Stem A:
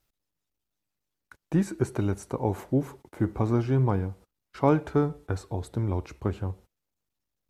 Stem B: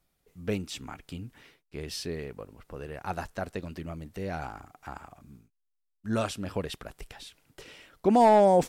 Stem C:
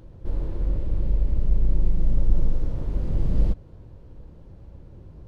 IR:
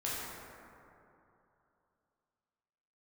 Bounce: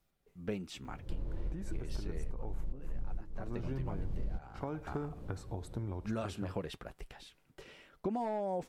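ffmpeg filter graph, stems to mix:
-filter_complex "[0:a]acompressor=threshold=-26dB:ratio=6,volume=-7dB,asplit=2[a][b];[1:a]highshelf=f=3.4k:g=-8.5,flanger=delay=5:depth=1.1:regen=-61:speed=0.25:shape=triangular,volume=0.5dB[c];[2:a]dynaudnorm=f=570:g=3:m=8dB,adelay=850,volume=-4dB[d];[b]apad=whole_len=270303[e];[d][e]sidechaincompress=threshold=-47dB:ratio=12:attack=20:release=257[f];[a][c][f]amix=inputs=3:normalize=0,acompressor=threshold=-32dB:ratio=16"

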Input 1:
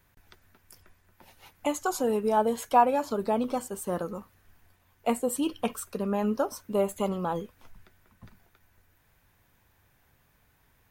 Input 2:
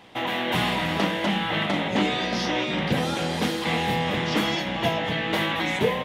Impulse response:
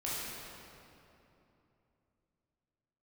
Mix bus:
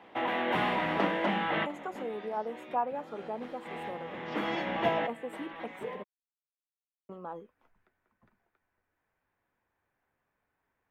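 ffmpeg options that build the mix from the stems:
-filter_complex "[0:a]volume=-10dB,asplit=3[a][b][c];[a]atrim=end=6.03,asetpts=PTS-STARTPTS,afade=t=out:st=6.026:d=0.004:c=hsin[d];[b]atrim=start=6.03:end=7.09,asetpts=PTS-STARTPTS,volume=0[e];[c]atrim=start=7.09,asetpts=PTS-STARTPTS,afade=t=in:d=0.004:c=hsin[f];[d][e][f]concat=n=3:v=0:a=1,asplit=2[g][h];[1:a]volume=-2dB[i];[h]apad=whole_len=266375[j];[i][j]sidechaincompress=threshold=-48dB:ratio=16:attack=6.1:release=617[k];[g][k]amix=inputs=2:normalize=0,acrossover=split=230 2400:gain=0.224 1 0.126[l][m][n];[l][m][n]amix=inputs=3:normalize=0"

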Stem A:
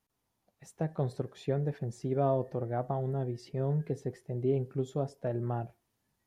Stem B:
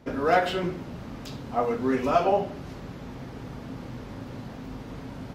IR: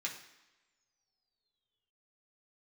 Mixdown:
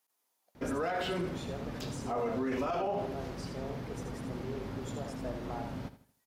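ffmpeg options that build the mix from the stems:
-filter_complex "[0:a]alimiter=level_in=3dB:limit=-24dB:level=0:latency=1,volume=-3dB,highpass=500,highshelf=f=6k:g=8.5,volume=-0.5dB,asplit=2[a][b];[b]volume=-6.5dB[c];[1:a]adelay=550,volume=-2dB,asplit=2[d][e];[e]volume=-14dB[f];[c][f]amix=inputs=2:normalize=0,aecho=0:1:80|160|240|320|400:1|0.35|0.122|0.0429|0.015[g];[a][d][g]amix=inputs=3:normalize=0,alimiter=level_in=1.5dB:limit=-24dB:level=0:latency=1:release=40,volume=-1.5dB"

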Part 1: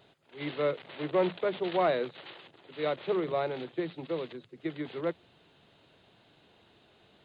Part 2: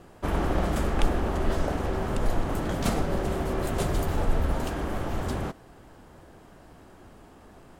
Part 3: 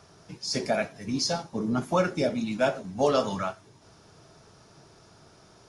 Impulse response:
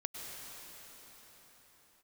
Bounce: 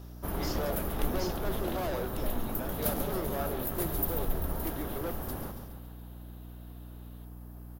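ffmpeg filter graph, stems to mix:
-filter_complex "[0:a]asoftclip=type=hard:threshold=-31.5dB,volume=-2dB[a];[1:a]aexciter=amount=15:drive=4.8:freq=11k,volume=-8.5dB,asplit=2[b][c];[c]volume=-8.5dB[d];[2:a]acompressor=threshold=-34dB:ratio=6,volume=-5.5dB[e];[d]aecho=0:1:139|278|417|556|695|834|973|1112:1|0.56|0.314|0.176|0.0983|0.0551|0.0308|0.0173[f];[a][b][e][f]amix=inputs=4:normalize=0,equalizer=f=2.3k:t=o:w=0.74:g=-4.5,aeval=exprs='val(0)+0.00631*(sin(2*PI*60*n/s)+sin(2*PI*2*60*n/s)/2+sin(2*PI*3*60*n/s)/3+sin(2*PI*4*60*n/s)/4+sin(2*PI*5*60*n/s)/5)':c=same"

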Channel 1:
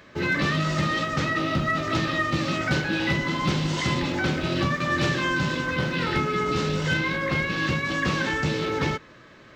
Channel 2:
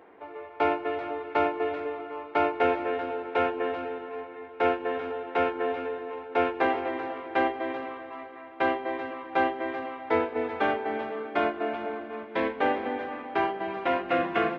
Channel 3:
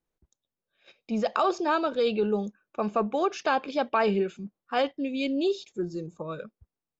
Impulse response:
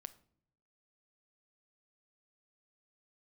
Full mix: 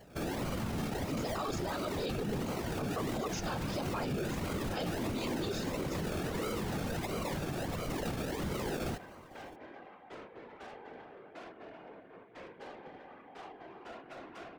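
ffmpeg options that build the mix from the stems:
-filter_complex "[0:a]acrusher=samples=35:mix=1:aa=0.000001:lfo=1:lforange=21:lforate=1.5,volume=0dB[a];[1:a]asoftclip=type=tanh:threshold=-29.5dB,volume=-9.5dB[b];[2:a]bass=f=250:g=7,treble=f=4k:g=15,volume=-0.5dB[c];[a][b][c]amix=inputs=3:normalize=0,afftfilt=real='hypot(re,im)*cos(2*PI*random(0))':imag='hypot(re,im)*sin(2*PI*random(1))':win_size=512:overlap=0.75,alimiter=level_in=3dB:limit=-24dB:level=0:latency=1:release=59,volume=-3dB"

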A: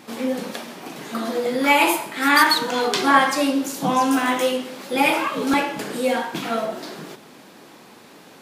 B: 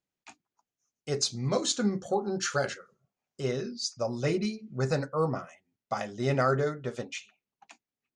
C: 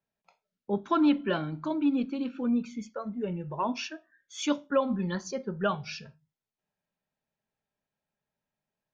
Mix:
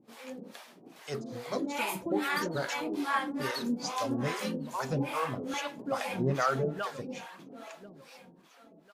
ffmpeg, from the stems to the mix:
-filter_complex "[0:a]volume=-13dB,asplit=2[a][b];[b]volume=-6dB[c];[1:a]volume=0.5dB[d];[2:a]adelay=1150,volume=-4dB,asplit=2[e][f];[f]volume=-13dB[g];[c][g]amix=inputs=2:normalize=0,aecho=0:1:1044|2088|3132|4176:1|0.3|0.09|0.027[h];[a][d][e][h]amix=inputs=4:normalize=0,acrossover=split=570[i][j];[i]aeval=exprs='val(0)*(1-1/2+1/2*cos(2*PI*2.4*n/s))':c=same[k];[j]aeval=exprs='val(0)*(1-1/2-1/2*cos(2*PI*2.4*n/s))':c=same[l];[k][l]amix=inputs=2:normalize=0"

